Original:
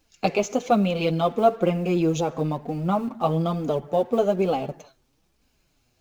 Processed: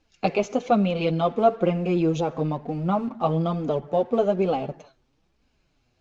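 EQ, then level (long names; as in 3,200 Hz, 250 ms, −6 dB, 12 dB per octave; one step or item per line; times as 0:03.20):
high-frequency loss of the air 110 metres
0.0 dB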